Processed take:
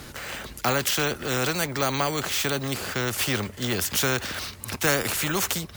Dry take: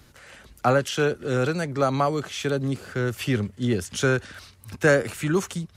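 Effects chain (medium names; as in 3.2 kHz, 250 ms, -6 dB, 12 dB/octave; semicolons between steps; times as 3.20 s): careless resampling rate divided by 2×, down none, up hold; spectrum-flattening compressor 2:1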